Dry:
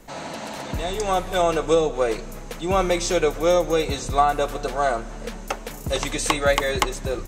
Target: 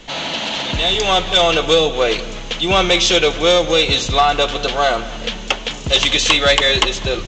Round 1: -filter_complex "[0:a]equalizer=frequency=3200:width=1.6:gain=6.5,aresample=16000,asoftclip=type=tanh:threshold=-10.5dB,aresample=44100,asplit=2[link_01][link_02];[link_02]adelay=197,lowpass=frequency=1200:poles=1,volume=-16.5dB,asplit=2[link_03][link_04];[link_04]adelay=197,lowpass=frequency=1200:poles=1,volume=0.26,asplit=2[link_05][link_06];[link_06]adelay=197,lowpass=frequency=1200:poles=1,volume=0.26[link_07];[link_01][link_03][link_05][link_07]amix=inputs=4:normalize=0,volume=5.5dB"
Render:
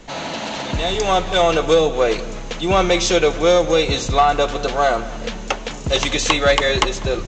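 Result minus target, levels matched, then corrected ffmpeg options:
4,000 Hz band −5.0 dB
-filter_complex "[0:a]equalizer=frequency=3200:width=1.6:gain=18,aresample=16000,asoftclip=type=tanh:threshold=-10.5dB,aresample=44100,asplit=2[link_01][link_02];[link_02]adelay=197,lowpass=frequency=1200:poles=1,volume=-16.5dB,asplit=2[link_03][link_04];[link_04]adelay=197,lowpass=frequency=1200:poles=1,volume=0.26,asplit=2[link_05][link_06];[link_06]adelay=197,lowpass=frequency=1200:poles=1,volume=0.26[link_07];[link_01][link_03][link_05][link_07]amix=inputs=4:normalize=0,volume=5.5dB"

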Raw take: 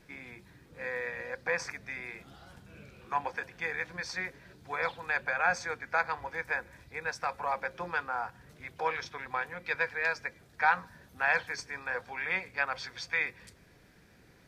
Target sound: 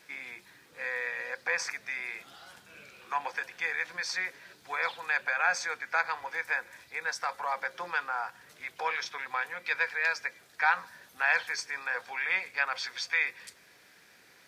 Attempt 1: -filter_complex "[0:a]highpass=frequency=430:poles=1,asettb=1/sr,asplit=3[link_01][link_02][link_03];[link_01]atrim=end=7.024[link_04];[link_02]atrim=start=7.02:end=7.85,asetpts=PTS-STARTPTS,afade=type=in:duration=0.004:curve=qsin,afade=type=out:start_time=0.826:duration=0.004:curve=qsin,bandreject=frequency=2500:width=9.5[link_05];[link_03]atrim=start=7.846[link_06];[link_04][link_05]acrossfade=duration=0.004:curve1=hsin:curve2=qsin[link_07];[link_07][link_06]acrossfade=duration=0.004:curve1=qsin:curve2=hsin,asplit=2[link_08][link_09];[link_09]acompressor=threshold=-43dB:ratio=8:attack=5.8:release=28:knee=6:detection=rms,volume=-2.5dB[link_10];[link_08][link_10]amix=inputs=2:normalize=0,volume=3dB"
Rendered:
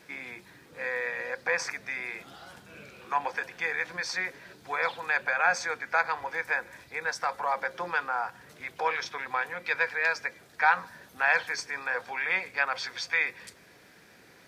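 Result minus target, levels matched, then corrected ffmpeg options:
500 Hz band +4.5 dB
-filter_complex "[0:a]highpass=frequency=1400:poles=1,asettb=1/sr,asplit=3[link_01][link_02][link_03];[link_01]atrim=end=7.024[link_04];[link_02]atrim=start=7.02:end=7.85,asetpts=PTS-STARTPTS,afade=type=in:duration=0.004:curve=qsin,afade=type=out:start_time=0.826:duration=0.004:curve=qsin,bandreject=frequency=2500:width=9.5[link_05];[link_03]atrim=start=7.846[link_06];[link_04][link_05]acrossfade=duration=0.004:curve1=hsin:curve2=qsin[link_07];[link_07][link_06]acrossfade=duration=0.004:curve1=qsin:curve2=hsin,asplit=2[link_08][link_09];[link_09]acompressor=threshold=-43dB:ratio=8:attack=5.8:release=28:knee=6:detection=rms,volume=-2.5dB[link_10];[link_08][link_10]amix=inputs=2:normalize=0,volume=3dB"

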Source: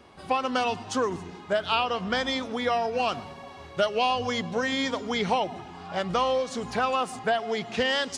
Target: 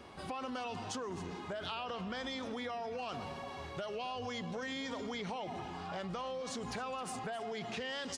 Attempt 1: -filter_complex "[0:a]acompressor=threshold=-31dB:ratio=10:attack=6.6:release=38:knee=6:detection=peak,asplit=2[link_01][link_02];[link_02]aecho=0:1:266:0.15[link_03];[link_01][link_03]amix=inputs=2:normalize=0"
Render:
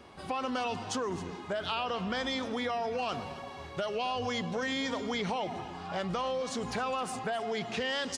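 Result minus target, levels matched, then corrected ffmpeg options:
downward compressor: peak gain reduction −7.5 dB
-filter_complex "[0:a]acompressor=threshold=-39.5dB:ratio=10:attack=6.6:release=38:knee=6:detection=peak,asplit=2[link_01][link_02];[link_02]aecho=0:1:266:0.15[link_03];[link_01][link_03]amix=inputs=2:normalize=0"

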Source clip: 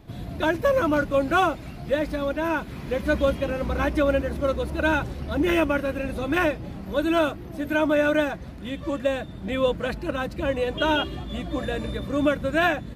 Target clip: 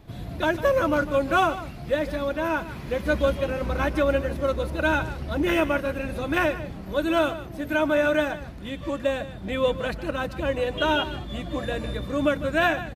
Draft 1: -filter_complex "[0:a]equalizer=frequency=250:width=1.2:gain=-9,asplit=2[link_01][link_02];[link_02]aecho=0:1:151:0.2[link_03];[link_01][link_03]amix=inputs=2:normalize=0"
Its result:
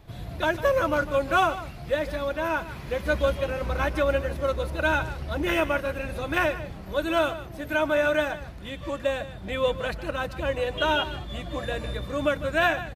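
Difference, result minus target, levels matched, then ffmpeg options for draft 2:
250 Hz band −4.0 dB
-filter_complex "[0:a]equalizer=frequency=250:width=1.2:gain=-2.5,asplit=2[link_01][link_02];[link_02]aecho=0:1:151:0.2[link_03];[link_01][link_03]amix=inputs=2:normalize=0"

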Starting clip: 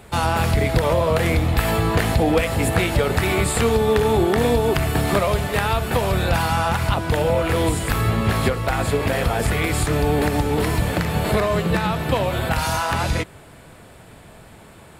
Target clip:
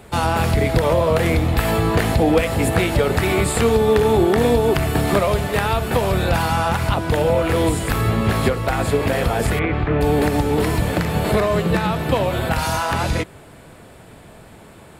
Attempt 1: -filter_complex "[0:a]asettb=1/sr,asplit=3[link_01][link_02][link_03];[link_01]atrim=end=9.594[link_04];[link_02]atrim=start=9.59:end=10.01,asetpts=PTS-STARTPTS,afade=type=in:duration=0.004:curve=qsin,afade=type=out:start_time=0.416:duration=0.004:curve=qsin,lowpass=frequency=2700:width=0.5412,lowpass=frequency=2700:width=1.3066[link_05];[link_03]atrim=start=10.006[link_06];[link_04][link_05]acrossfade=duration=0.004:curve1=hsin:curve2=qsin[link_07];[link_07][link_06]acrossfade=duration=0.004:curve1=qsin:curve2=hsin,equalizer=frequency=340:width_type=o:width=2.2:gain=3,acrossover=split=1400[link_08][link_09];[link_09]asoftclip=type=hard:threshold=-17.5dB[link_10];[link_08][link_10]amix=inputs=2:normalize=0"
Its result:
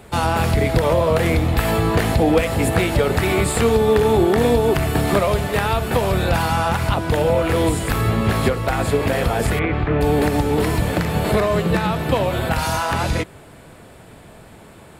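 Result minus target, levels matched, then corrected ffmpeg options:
hard clipping: distortion +25 dB
-filter_complex "[0:a]asettb=1/sr,asplit=3[link_01][link_02][link_03];[link_01]atrim=end=9.594[link_04];[link_02]atrim=start=9.59:end=10.01,asetpts=PTS-STARTPTS,afade=type=in:duration=0.004:curve=qsin,afade=type=out:start_time=0.416:duration=0.004:curve=qsin,lowpass=frequency=2700:width=0.5412,lowpass=frequency=2700:width=1.3066[link_05];[link_03]atrim=start=10.006[link_06];[link_04][link_05]acrossfade=duration=0.004:curve1=hsin:curve2=qsin[link_07];[link_07][link_06]acrossfade=duration=0.004:curve1=qsin:curve2=hsin,equalizer=frequency=340:width_type=o:width=2.2:gain=3,acrossover=split=1400[link_08][link_09];[link_09]asoftclip=type=hard:threshold=-10dB[link_10];[link_08][link_10]amix=inputs=2:normalize=0"

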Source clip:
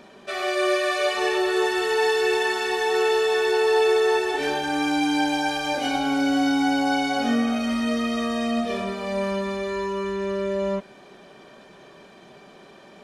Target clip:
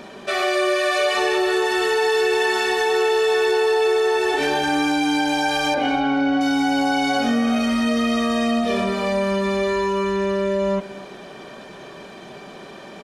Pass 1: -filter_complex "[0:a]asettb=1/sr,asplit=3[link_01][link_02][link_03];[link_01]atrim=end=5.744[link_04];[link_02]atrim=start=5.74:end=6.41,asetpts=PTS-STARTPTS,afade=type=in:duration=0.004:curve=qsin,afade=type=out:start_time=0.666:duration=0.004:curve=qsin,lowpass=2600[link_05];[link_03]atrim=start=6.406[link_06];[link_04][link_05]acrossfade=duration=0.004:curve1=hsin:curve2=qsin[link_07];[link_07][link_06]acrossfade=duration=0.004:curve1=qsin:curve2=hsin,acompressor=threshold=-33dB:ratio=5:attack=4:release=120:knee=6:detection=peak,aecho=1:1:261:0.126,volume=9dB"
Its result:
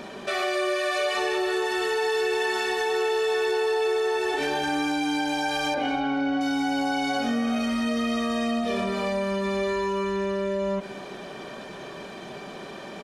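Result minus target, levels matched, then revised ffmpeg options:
downward compressor: peak gain reduction +6 dB
-filter_complex "[0:a]asettb=1/sr,asplit=3[link_01][link_02][link_03];[link_01]atrim=end=5.744[link_04];[link_02]atrim=start=5.74:end=6.41,asetpts=PTS-STARTPTS,afade=type=in:duration=0.004:curve=qsin,afade=type=out:start_time=0.666:duration=0.004:curve=qsin,lowpass=2600[link_05];[link_03]atrim=start=6.406[link_06];[link_04][link_05]acrossfade=duration=0.004:curve1=hsin:curve2=qsin[link_07];[link_07][link_06]acrossfade=duration=0.004:curve1=qsin:curve2=hsin,acompressor=threshold=-25.5dB:ratio=5:attack=4:release=120:knee=6:detection=peak,aecho=1:1:261:0.126,volume=9dB"

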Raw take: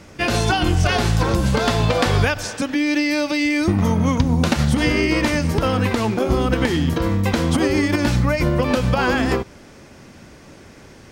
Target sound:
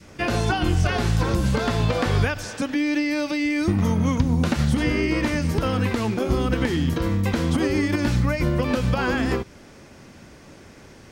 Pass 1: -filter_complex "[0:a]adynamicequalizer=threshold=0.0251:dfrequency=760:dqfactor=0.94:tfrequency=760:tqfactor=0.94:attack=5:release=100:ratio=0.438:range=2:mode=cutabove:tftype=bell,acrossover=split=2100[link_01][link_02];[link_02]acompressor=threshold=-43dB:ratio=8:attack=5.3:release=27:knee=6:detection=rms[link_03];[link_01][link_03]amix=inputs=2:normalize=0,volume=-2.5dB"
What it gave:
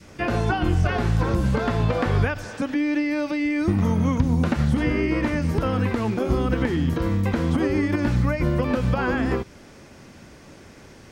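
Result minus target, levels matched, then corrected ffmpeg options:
downward compressor: peak gain reduction +9.5 dB
-filter_complex "[0:a]adynamicequalizer=threshold=0.0251:dfrequency=760:dqfactor=0.94:tfrequency=760:tqfactor=0.94:attack=5:release=100:ratio=0.438:range=2:mode=cutabove:tftype=bell,acrossover=split=2100[link_01][link_02];[link_02]acompressor=threshold=-32dB:ratio=8:attack=5.3:release=27:knee=6:detection=rms[link_03];[link_01][link_03]amix=inputs=2:normalize=0,volume=-2.5dB"

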